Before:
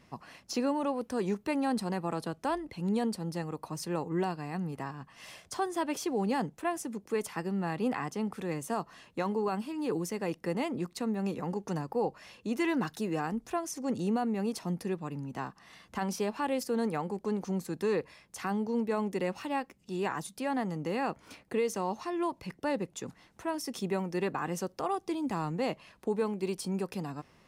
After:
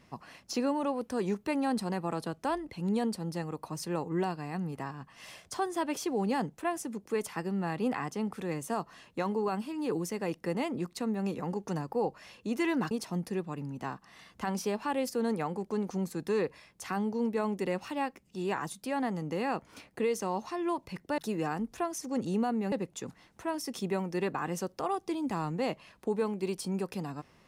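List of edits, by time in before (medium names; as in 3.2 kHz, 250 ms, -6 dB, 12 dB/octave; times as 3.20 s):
12.91–14.45 s: move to 22.72 s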